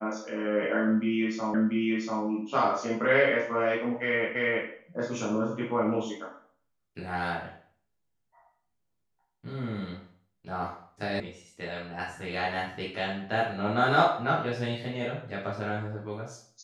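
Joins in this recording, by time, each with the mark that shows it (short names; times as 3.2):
1.54 repeat of the last 0.69 s
4.35 repeat of the last 0.33 s
11.2 sound cut off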